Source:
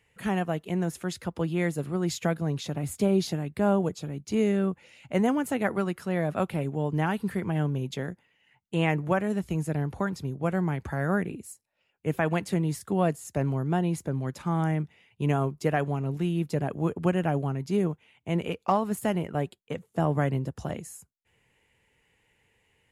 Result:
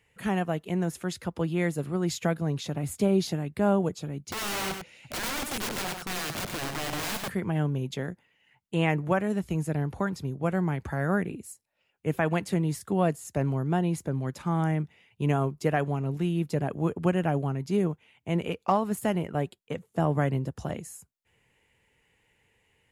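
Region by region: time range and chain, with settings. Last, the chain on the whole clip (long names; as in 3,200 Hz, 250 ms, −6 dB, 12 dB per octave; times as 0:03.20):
0:04.32–0:07.30: wrap-around overflow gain 28 dB + single-tap delay 98 ms −6 dB
whole clip: no processing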